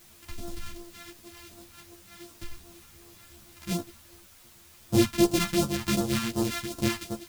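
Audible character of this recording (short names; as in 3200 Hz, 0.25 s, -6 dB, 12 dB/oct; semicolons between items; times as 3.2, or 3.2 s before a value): a buzz of ramps at a fixed pitch in blocks of 128 samples; phasing stages 2, 2.7 Hz, lowest notch 420–2100 Hz; a quantiser's noise floor 10-bit, dither triangular; a shimmering, thickened sound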